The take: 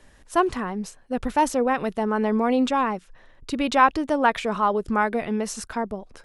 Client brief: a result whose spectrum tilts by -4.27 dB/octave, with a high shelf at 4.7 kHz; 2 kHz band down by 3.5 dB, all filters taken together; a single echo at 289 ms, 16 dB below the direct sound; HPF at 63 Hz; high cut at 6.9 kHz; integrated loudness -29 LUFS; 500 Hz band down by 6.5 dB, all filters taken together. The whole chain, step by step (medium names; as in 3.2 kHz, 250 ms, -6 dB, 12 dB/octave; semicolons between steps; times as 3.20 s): high-pass 63 Hz; low-pass 6.9 kHz; peaking EQ 500 Hz -8 dB; peaking EQ 2 kHz -5 dB; treble shelf 4.7 kHz +5 dB; delay 289 ms -16 dB; trim -2.5 dB